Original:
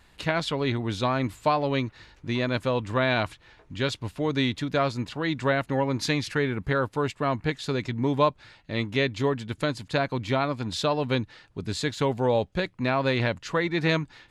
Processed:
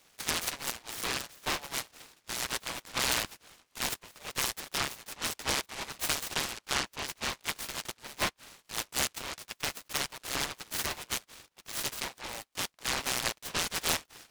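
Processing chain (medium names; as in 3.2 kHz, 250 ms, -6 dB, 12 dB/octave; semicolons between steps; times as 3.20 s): high-pass 1.2 kHz 24 dB/octave; treble shelf 9 kHz -8.5 dB; delay time shaken by noise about 1.3 kHz, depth 0.24 ms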